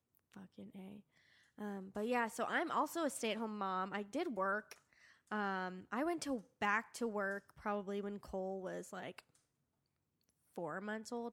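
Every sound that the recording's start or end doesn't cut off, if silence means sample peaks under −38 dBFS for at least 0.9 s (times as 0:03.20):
0:01.62–0:09.19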